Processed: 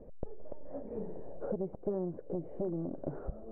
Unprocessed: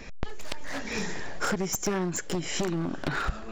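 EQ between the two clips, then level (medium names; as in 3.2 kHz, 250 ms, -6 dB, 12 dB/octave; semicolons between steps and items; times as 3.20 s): four-pole ladder low-pass 630 Hz, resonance 55%; +1.0 dB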